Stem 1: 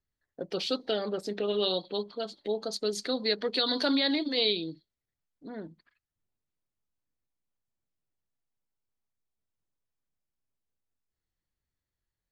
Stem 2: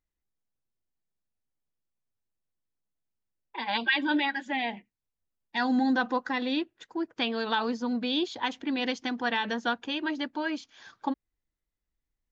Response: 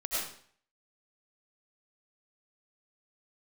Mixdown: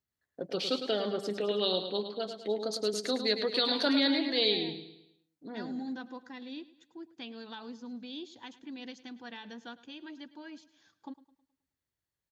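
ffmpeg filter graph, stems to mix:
-filter_complex "[0:a]volume=-1dB,asplit=2[a][b];[b]volume=-8.5dB[c];[1:a]equalizer=f=1.1k:w=0.31:g=-10.5,volume=-8.5dB,asplit=2[d][e];[e]volume=-18dB[f];[c][f]amix=inputs=2:normalize=0,aecho=0:1:106|212|318|424|530|636:1|0.43|0.185|0.0795|0.0342|0.0147[g];[a][d][g]amix=inputs=3:normalize=0,highpass=87"

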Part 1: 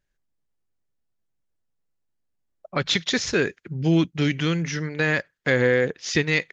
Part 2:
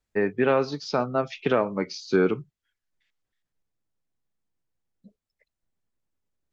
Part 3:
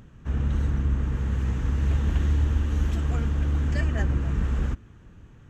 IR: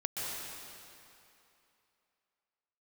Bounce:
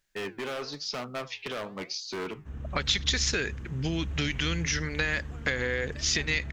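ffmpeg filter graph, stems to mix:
-filter_complex "[0:a]acompressor=threshold=-21dB:ratio=6,volume=2dB[a];[1:a]alimiter=limit=-13.5dB:level=0:latency=1:release=253,volume=24.5dB,asoftclip=hard,volume=-24.5dB,flanger=delay=3.4:depth=8.1:regen=88:speed=0.99:shape=triangular,volume=2dB[b];[2:a]adelay=2200,volume=-16dB,asplit=2[c][d];[d]volume=-8dB[e];[a][b]amix=inputs=2:normalize=0,tiltshelf=f=1.3k:g=-6,acompressor=threshold=-28dB:ratio=2,volume=0dB[f];[3:a]atrim=start_sample=2205[g];[e][g]afir=irnorm=-1:irlink=0[h];[c][f][h]amix=inputs=3:normalize=0"

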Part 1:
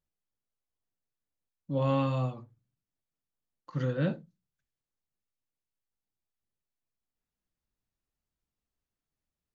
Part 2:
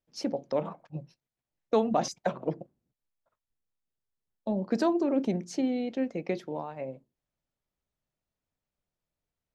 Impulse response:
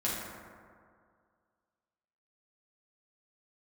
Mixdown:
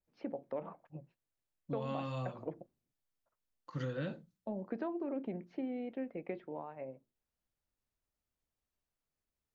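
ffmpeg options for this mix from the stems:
-filter_complex "[0:a]adynamicequalizer=threshold=0.00447:dfrequency=1600:dqfactor=0.7:tfrequency=1600:tqfactor=0.7:attack=5:release=100:ratio=0.375:range=1.5:mode=boostabove:tftype=highshelf,volume=-2.5dB[a];[1:a]lowpass=f=2.6k:w=0.5412,lowpass=f=2.6k:w=1.3066,volume=-7.5dB[b];[a][b]amix=inputs=2:normalize=0,equalizer=f=160:w=1.5:g=-3.5,acompressor=threshold=-34dB:ratio=10"

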